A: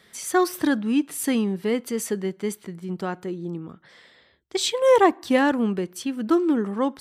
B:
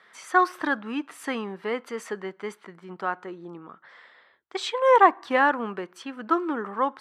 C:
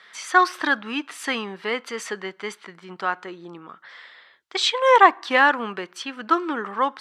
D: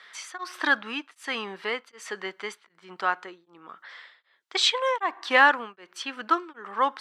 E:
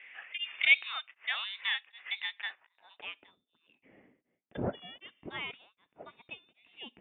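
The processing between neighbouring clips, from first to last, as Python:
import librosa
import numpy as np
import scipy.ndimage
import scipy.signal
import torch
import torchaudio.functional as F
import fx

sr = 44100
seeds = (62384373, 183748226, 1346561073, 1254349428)

y1 = fx.bandpass_q(x, sr, hz=1200.0, q=1.5)
y1 = y1 * librosa.db_to_amplitude(6.5)
y2 = fx.peak_eq(y1, sr, hz=4200.0, db=11.5, octaves=2.7)
y3 = fx.highpass(y2, sr, hz=390.0, slope=6)
y3 = y3 * np.abs(np.cos(np.pi * 1.3 * np.arange(len(y3)) / sr))
y4 = fx.freq_invert(y3, sr, carrier_hz=3900)
y4 = fx.filter_sweep_bandpass(y4, sr, from_hz=2300.0, to_hz=240.0, start_s=2.31, end_s=3.39, q=1.4)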